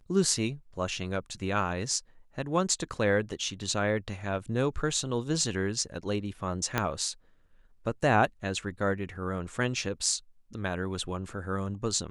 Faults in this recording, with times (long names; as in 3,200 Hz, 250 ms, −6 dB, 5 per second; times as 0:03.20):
0:06.78: click −11 dBFS